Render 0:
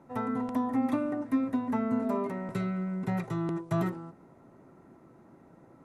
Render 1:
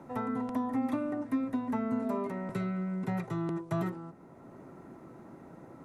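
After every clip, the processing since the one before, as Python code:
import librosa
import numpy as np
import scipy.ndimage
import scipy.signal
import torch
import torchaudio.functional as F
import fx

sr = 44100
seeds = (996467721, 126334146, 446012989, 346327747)

y = fx.band_squash(x, sr, depth_pct=40)
y = y * 10.0 ** (-2.5 / 20.0)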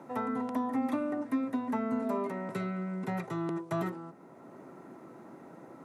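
y = scipy.signal.sosfilt(scipy.signal.bessel(2, 220.0, 'highpass', norm='mag', fs=sr, output='sos'), x)
y = y * 10.0 ** (2.0 / 20.0)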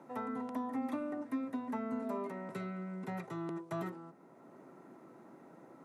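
y = scipy.signal.sosfilt(scipy.signal.butter(2, 110.0, 'highpass', fs=sr, output='sos'), x)
y = y * 10.0 ** (-6.0 / 20.0)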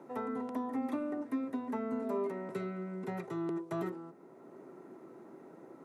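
y = fx.peak_eq(x, sr, hz=390.0, db=8.0, octaves=0.6)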